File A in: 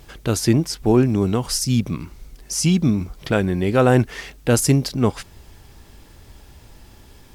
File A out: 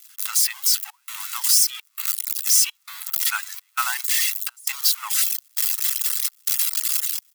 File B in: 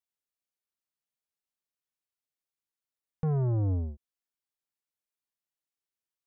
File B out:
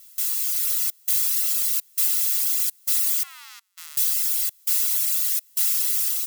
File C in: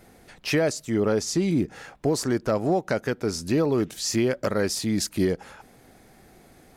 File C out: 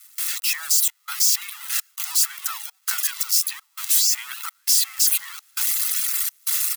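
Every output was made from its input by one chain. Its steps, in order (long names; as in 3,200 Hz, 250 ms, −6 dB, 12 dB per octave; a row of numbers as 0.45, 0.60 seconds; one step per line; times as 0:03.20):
spike at every zero crossing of −10 dBFS
comb filter 1.5 ms, depth 38%
gate pattern "..xxxxxxxx" 167 BPM −24 dB
reverb reduction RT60 1.3 s
Butterworth high-pass 920 Hz 72 dB per octave
automatic gain control gain up to 6 dB
loudness normalisation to −20 LKFS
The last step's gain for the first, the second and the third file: −4.5, −8.0, −5.5 decibels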